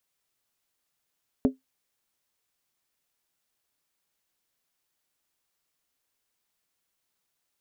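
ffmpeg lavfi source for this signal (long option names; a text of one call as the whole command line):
ffmpeg -f lavfi -i "aevalsrc='0.2*pow(10,-3*t/0.15)*sin(2*PI*262*t)+0.0891*pow(10,-3*t/0.119)*sin(2*PI*417.6*t)+0.0398*pow(10,-3*t/0.103)*sin(2*PI*559.6*t)+0.0178*pow(10,-3*t/0.099)*sin(2*PI*601.6*t)+0.00794*pow(10,-3*t/0.092)*sin(2*PI*695.1*t)':duration=0.63:sample_rate=44100" out.wav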